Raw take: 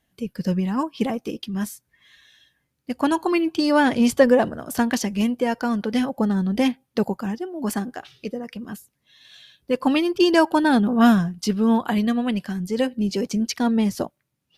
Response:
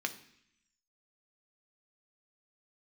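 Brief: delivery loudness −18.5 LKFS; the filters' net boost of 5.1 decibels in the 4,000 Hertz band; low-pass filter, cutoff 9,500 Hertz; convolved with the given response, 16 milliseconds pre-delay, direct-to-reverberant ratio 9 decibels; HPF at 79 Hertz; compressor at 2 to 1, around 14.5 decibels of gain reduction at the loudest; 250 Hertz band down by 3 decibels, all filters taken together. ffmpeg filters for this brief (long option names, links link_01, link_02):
-filter_complex "[0:a]highpass=79,lowpass=9500,equalizer=frequency=250:width_type=o:gain=-3.5,equalizer=frequency=4000:width_type=o:gain=7,acompressor=threshold=-38dB:ratio=2,asplit=2[link_01][link_02];[1:a]atrim=start_sample=2205,adelay=16[link_03];[link_02][link_03]afir=irnorm=-1:irlink=0,volume=-12.5dB[link_04];[link_01][link_04]amix=inputs=2:normalize=0,volume=15.5dB"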